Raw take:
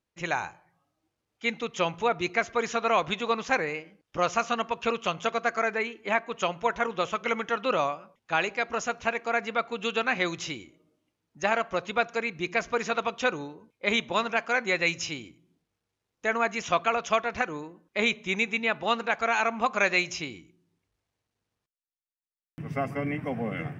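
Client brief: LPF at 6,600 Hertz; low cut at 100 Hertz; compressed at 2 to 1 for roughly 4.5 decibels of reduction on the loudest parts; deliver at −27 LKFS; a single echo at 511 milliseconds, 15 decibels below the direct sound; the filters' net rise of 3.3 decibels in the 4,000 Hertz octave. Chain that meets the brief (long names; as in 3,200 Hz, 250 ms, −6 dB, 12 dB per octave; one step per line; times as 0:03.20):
high-pass filter 100 Hz
low-pass filter 6,600 Hz
parametric band 4,000 Hz +4.5 dB
downward compressor 2 to 1, threshold −27 dBFS
single-tap delay 511 ms −15 dB
level +3.5 dB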